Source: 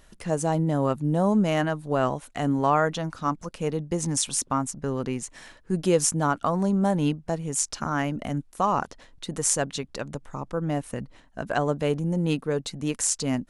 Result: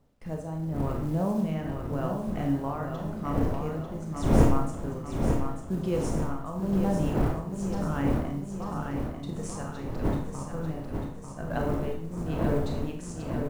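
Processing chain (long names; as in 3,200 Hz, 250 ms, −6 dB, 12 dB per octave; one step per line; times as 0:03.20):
wind on the microphone 490 Hz −28 dBFS
low-pass filter 2,800 Hz 6 dB per octave
noise gate with hold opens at −30 dBFS
low-shelf EQ 180 Hz +10.5 dB
floating-point word with a short mantissa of 4 bits
amplitude tremolo 0.87 Hz, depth 65%
bit-depth reduction 12 bits, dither none
on a send: repeating echo 894 ms, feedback 55%, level −6 dB
on the sum: four-comb reverb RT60 0.53 s, combs from 25 ms, DRR 2 dB
level −9 dB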